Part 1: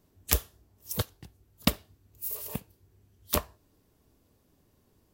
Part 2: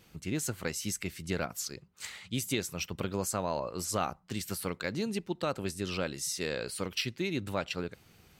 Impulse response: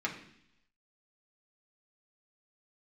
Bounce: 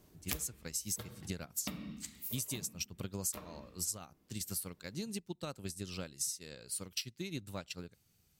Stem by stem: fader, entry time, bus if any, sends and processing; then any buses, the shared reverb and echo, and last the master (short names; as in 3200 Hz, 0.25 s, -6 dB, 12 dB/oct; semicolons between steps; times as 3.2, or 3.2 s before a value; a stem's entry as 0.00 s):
+2.0 dB, 0.00 s, send -13 dB, auto duck -15 dB, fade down 1.30 s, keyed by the second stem
+2.0 dB, 0.00 s, no send, tone controls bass +8 dB, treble +14 dB; upward expander 2.5:1, over -34 dBFS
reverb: on, RT60 0.70 s, pre-delay 3 ms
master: compressor 8:1, threshold -35 dBFS, peak gain reduction 18 dB